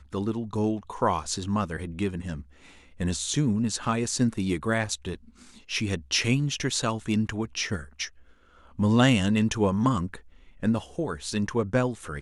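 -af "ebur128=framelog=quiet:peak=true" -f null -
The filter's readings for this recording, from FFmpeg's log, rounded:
Integrated loudness:
  I:         -27.0 LUFS
  Threshold: -37.6 LUFS
Loudness range:
  LRA:         3.4 LU
  Threshold: -47.3 LUFS
  LRA low:   -29.1 LUFS
  LRA high:  -25.7 LUFS
True peak:
  Peak:       -7.8 dBFS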